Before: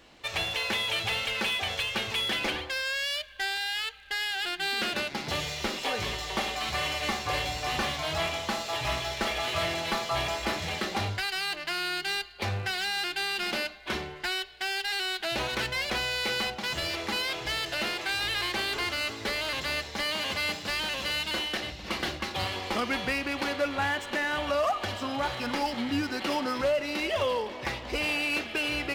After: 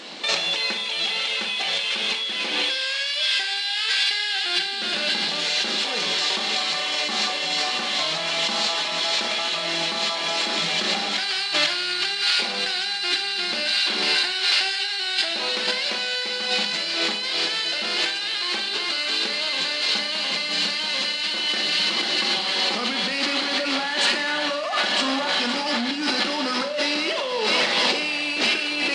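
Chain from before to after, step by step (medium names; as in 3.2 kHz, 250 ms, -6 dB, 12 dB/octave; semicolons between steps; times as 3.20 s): peaking EQ 4.2 kHz +8.5 dB 0.77 oct; feedback echo behind a high-pass 494 ms, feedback 76%, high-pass 1.5 kHz, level -6.5 dB; compressor with a negative ratio -34 dBFS, ratio -1; Schroeder reverb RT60 0.44 s, combs from 30 ms, DRR 7.5 dB; FFT band-pass 160–10000 Hz; transformer saturation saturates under 1.4 kHz; trim +9 dB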